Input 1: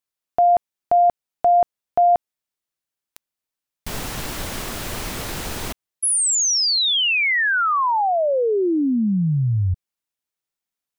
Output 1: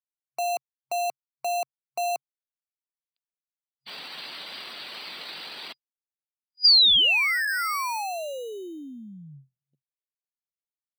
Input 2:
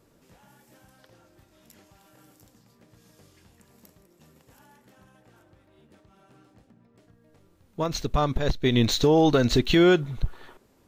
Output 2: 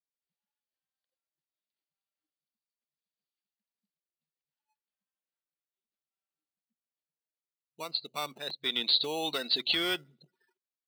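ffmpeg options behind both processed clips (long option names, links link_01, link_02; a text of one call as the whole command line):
ffmpeg -i in.wav -filter_complex "[0:a]afftdn=noise_reduction=34:noise_floor=-37,aderivative,afftfilt=real='re*between(b*sr/4096,130,4900)':imag='im*between(b*sr/4096,130,4900)':win_size=4096:overlap=0.75,acrossover=split=400|1600[link_01][link_02][link_03];[link_02]acrusher=samples=13:mix=1:aa=0.000001[link_04];[link_01][link_04][link_03]amix=inputs=3:normalize=0,volume=8dB" out.wav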